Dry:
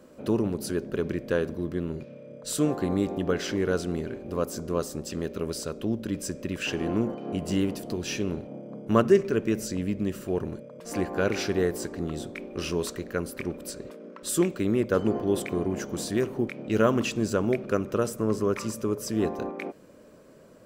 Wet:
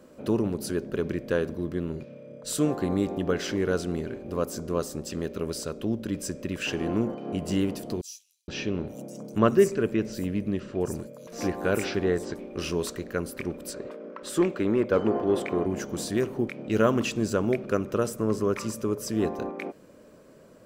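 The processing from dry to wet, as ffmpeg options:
-filter_complex "[0:a]asettb=1/sr,asplit=3[s0][s1][s2];[s0]atrim=end=8.014[s3];[s1]atrim=start=8.01:end=12.39,asetpts=PTS-STARTPTS,afade=t=in:d=0.004:c=qsin,afade=t=out:st=4.376:d=0.004:c=qsin,acrossover=split=5500[s4][s5];[s4]adelay=470[s6];[s6][s5]amix=inputs=2:normalize=0,atrim=end_sample=193158[s7];[s2]atrim=start=12.386[s8];[s3][s7]acrossfade=d=0.004:c1=hsin:c2=qsin[s9];[s9][s8]acrossfade=d=0.004:c1=qsin:c2=hsin,asettb=1/sr,asplit=3[s10][s11][s12];[s10]atrim=end=13.734[s13];[s11]atrim=start=13.73:end=15.66,asetpts=PTS-STARTPTS,afade=t=in:d=0.004:c=qsin,afade=t=out:st=1.926:d=0.004:c=qsin,asplit=2[s14][s15];[s15]highpass=f=720:p=1,volume=5.01,asoftclip=type=tanh:threshold=0.282[s16];[s14][s16]amix=inputs=2:normalize=0,lowpass=f=1200:p=1,volume=0.501[s17];[s12]atrim=start=15.656[s18];[s13][s17]acrossfade=d=0.004:c1=hsin:c2=qsin[s19];[s19][s18]acrossfade=d=0.004:c1=qsin:c2=hsin"

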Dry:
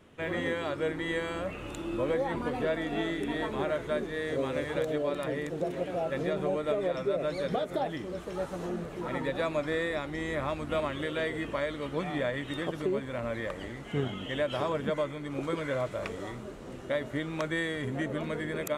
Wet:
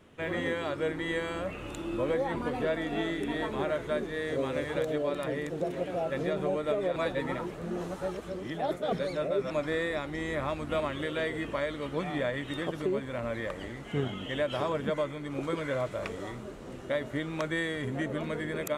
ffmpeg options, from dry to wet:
-filter_complex "[0:a]asplit=3[s0][s1][s2];[s0]atrim=end=6.962[s3];[s1]atrim=start=6.958:end=9.512,asetpts=PTS-STARTPTS,areverse[s4];[s2]atrim=start=9.508[s5];[s3][s4]acrossfade=d=0.004:c1=hsin:c2=hsin[s6];[s6][s5]acrossfade=d=0.004:c1=hsin:c2=hsin"

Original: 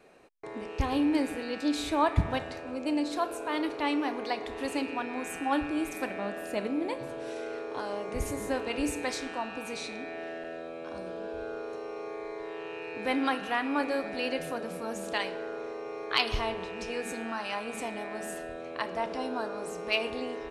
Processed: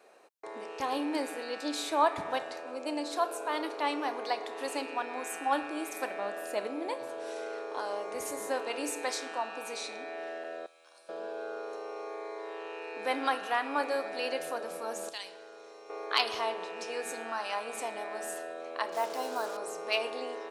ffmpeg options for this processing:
-filter_complex "[0:a]asettb=1/sr,asplit=3[s0][s1][s2];[s0]atrim=end=10.664[s3];[s1]atrim=start=10.66:end=11.09,asetpts=PTS-STARTPTS,afade=t=in:d=0.004:c=qsin,afade=t=out:st=0.426:d=0.004:c=qsin,aderivative[s4];[s2]atrim=start=11.086[s5];[s3][s4]acrossfade=d=0.004:c1=hsin:c2=qsin[s6];[s6][s5]acrossfade=d=0.004:c1=qsin:c2=hsin,asettb=1/sr,asplit=3[s7][s8][s9];[s7]atrim=end=15.094[s10];[s8]atrim=start=15.09:end=15.9,asetpts=PTS-STARTPTS,afade=t=in:d=0.004:c=qsin,afade=t=out:st=0.806:d=0.004:c=qsin,acrossover=split=140|3000[s11][s12][s13];[s12]acompressor=threshold=0.00158:ratio=2:attack=3.2:release=140:knee=2.83:detection=peak[s14];[s11][s14][s13]amix=inputs=3:normalize=0[s15];[s9]atrim=start=15.896[s16];[s10][s15]acrossfade=d=0.004:c1=hsin:c2=qsin[s17];[s17][s16]acrossfade=d=0.004:c1=qsin:c2=hsin,asettb=1/sr,asplit=3[s18][s19][s20];[s18]atrim=end=18.924[s21];[s19]atrim=start=18.92:end=19.57,asetpts=PTS-STARTPTS,afade=t=in:d=0.004:c=qsin,afade=t=out:st=0.646:d=0.004:c=qsin,acrusher=bits=6:mix=0:aa=0.5[s22];[s20]atrim=start=19.566[s23];[s21][s22]acrossfade=d=0.004:c1=hsin:c2=qsin[s24];[s24][s23]acrossfade=d=0.004:c1=qsin:c2=hsin,highpass=520,equalizer=f=2400:w=1.1:g=-5.5,volume=1.33"

